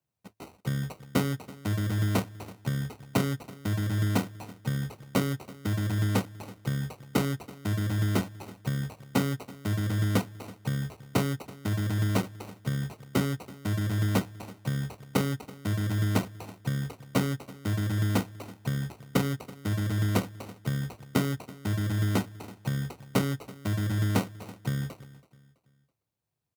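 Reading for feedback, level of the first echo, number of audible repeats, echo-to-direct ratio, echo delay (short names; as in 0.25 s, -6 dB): 37%, -19.5 dB, 2, -19.0 dB, 0.329 s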